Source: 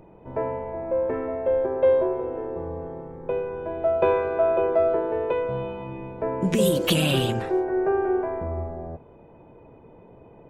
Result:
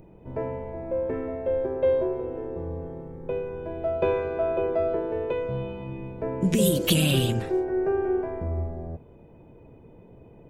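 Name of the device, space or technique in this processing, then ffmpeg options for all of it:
smiley-face EQ: -af "lowshelf=f=150:g=4,equalizer=f=1k:t=o:w=1.9:g=-7.5,highshelf=f=7k:g=5"

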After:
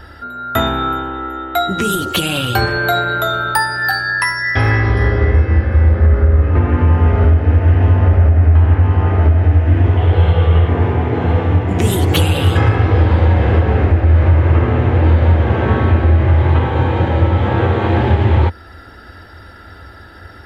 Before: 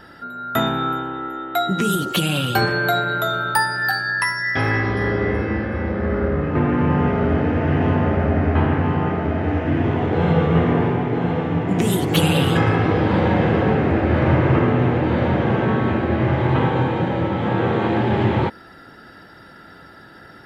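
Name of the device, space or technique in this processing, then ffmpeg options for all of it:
car stereo with a boomy subwoofer: -filter_complex "[0:a]lowshelf=f=110:t=q:w=3:g=10,alimiter=limit=-7.5dB:level=0:latency=1:release=408,asettb=1/sr,asplit=3[a][b][c];[a]atrim=end=9.974[d];[b]atrim=start=9.97:end=10.69,asetpts=PTS-STARTPTS,afade=t=in:d=0.004:c=qsin,afade=t=out:st=0.716:d=0.004:c=qsin,equalizer=f=250:t=o:w=0.33:g=-10,equalizer=f=3.15k:t=o:w=0.33:g=8,equalizer=f=6.3k:t=o:w=0.33:g=-7,equalizer=f=10k:t=o:w=0.33:g=7[e];[c]atrim=start=10.686[f];[d][e]acrossfade=d=0.004:c1=hsin:c2=qsin[g];[g][f]acrossfade=d=0.004:c1=qsin:c2=hsin,volume=4.5dB"

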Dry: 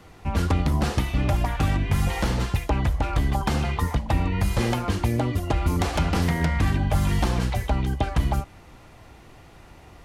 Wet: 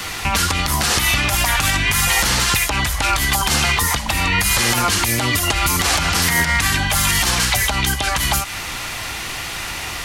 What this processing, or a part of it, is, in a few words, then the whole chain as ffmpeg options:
mastering chain: -filter_complex "[0:a]equalizer=f=570:t=o:w=1.7:g=-3.5,acrossover=split=860|2000|4500[a][b][c][d];[a]acompressor=threshold=-29dB:ratio=4[e];[b]acompressor=threshold=-42dB:ratio=4[f];[c]acompressor=threshold=-52dB:ratio=4[g];[d]acompressor=threshold=-45dB:ratio=4[h];[e][f][g][h]amix=inputs=4:normalize=0,acompressor=threshold=-32dB:ratio=3,tiltshelf=f=970:g=-10,asoftclip=type=hard:threshold=-20dB,alimiter=level_in=28dB:limit=-1dB:release=50:level=0:latency=1,volume=-5.5dB"

